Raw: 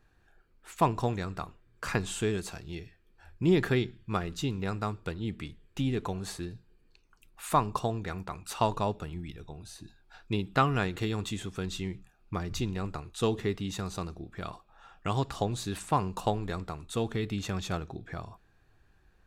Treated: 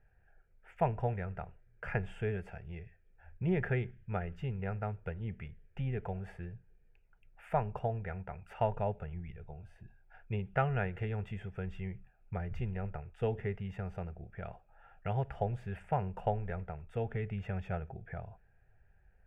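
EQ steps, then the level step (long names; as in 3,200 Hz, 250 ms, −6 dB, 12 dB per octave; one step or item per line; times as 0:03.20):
high-frequency loss of the air 430 metres
phaser with its sweep stopped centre 1,100 Hz, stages 6
0.0 dB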